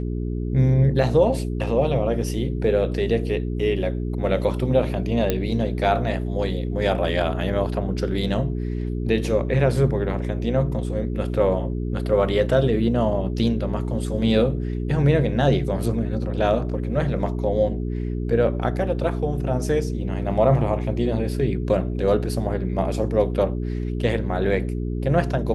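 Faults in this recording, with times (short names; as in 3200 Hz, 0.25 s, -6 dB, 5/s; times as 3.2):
hum 60 Hz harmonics 7 -26 dBFS
5.3 pop -7 dBFS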